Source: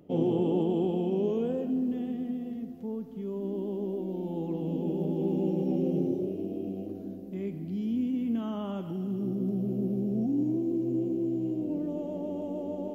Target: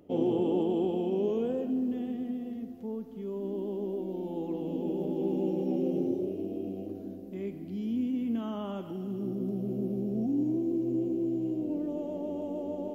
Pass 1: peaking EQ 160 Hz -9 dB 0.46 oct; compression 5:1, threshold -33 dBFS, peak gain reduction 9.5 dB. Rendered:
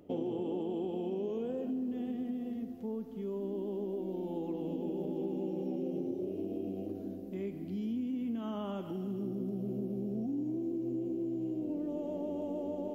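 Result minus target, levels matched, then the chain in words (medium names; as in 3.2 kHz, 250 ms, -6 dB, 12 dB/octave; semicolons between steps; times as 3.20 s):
compression: peak gain reduction +9.5 dB
peaking EQ 160 Hz -9 dB 0.46 oct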